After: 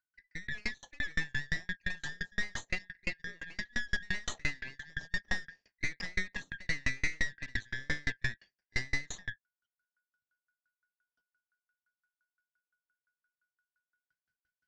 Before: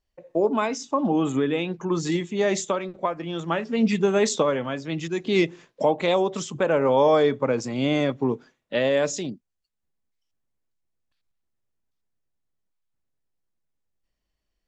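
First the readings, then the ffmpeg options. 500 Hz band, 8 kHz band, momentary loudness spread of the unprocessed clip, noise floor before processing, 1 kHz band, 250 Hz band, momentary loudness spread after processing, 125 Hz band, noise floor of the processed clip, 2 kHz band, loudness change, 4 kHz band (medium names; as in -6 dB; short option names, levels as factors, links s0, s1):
-32.5 dB, -12.5 dB, 9 LU, -80 dBFS, -26.0 dB, -23.5 dB, 8 LU, -13.0 dB, under -85 dBFS, -0.5 dB, -13.5 dB, -9.0 dB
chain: -af "afftfilt=real='real(if(lt(b,272),68*(eq(floor(b/68),0)*2+eq(floor(b/68),1)*0+eq(floor(b/68),2)*3+eq(floor(b/68),3)*1)+mod(b,68),b),0)':imag='imag(if(lt(b,272),68*(eq(floor(b/68),0)*2+eq(floor(b/68),1)*0+eq(floor(b/68),2)*3+eq(floor(b/68),3)*1)+mod(b,68),b),0)':win_size=2048:overlap=0.75,aeval=exprs='(tanh(17.8*val(0)+0.7)-tanh(0.7))/17.8':c=same,lowpass=f=6400:w=0.5412,lowpass=f=6400:w=1.3066,lowshelf=f=310:g=8.5,aeval=exprs='val(0)*pow(10,-37*if(lt(mod(5.8*n/s,1),2*abs(5.8)/1000),1-mod(5.8*n/s,1)/(2*abs(5.8)/1000),(mod(5.8*n/s,1)-2*abs(5.8)/1000)/(1-2*abs(5.8)/1000))/20)':c=same"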